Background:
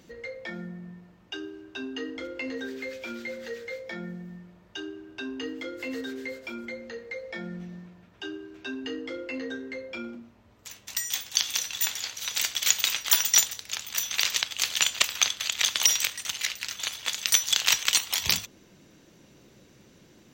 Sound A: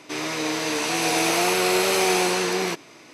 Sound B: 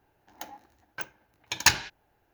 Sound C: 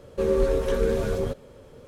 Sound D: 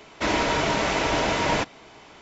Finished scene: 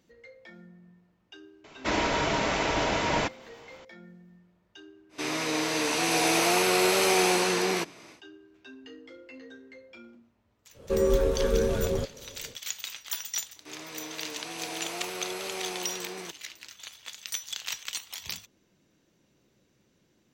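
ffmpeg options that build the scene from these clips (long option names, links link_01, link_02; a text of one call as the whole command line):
ffmpeg -i bed.wav -i cue0.wav -i cue1.wav -i cue2.wav -i cue3.wav -filter_complex "[1:a]asplit=2[link_01][link_02];[0:a]volume=-12.5dB[link_03];[4:a]atrim=end=2.21,asetpts=PTS-STARTPTS,volume=-3.5dB,afade=type=in:duration=0.004:curve=hsin,afade=type=out:start_time=2.206:duration=0.004:curve=hsin,adelay=1640[link_04];[link_01]atrim=end=3.13,asetpts=PTS-STARTPTS,volume=-2.5dB,afade=type=in:duration=0.1,afade=type=out:start_time=3.03:duration=0.1,adelay=224469S[link_05];[3:a]atrim=end=1.87,asetpts=PTS-STARTPTS,volume=-1.5dB,afade=type=in:duration=0.1,afade=type=out:start_time=1.77:duration=0.1,adelay=10720[link_06];[link_02]atrim=end=3.13,asetpts=PTS-STARTPTS,volume=-15.5dB,afade=type=in:duration=0.004:curve=hsin,afade=type=out:start_time=3.126:duration=0.004:curve=hsin,adelay=13560[link_07];[link_03][link_04][link_05][link_06][link_07]amix=inputs=5:normalize=0" out.wav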